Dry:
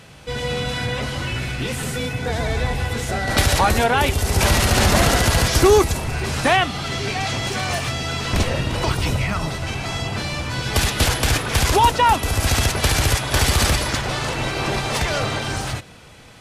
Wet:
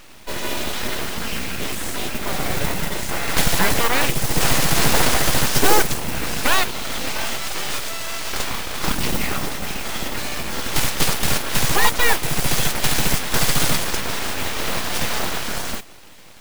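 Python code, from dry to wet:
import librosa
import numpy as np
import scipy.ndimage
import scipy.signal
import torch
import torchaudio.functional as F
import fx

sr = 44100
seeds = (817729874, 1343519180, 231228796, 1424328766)

y = fx.highpass(x, sr, hz=220.0, slope=24, at=(7.37, 8.84))
y = fx.mod_noise(y, sr, seeds[0], snr_db=11)
y = np.abs(y)
y = y * 10.0 ** (1.5 / 20.0)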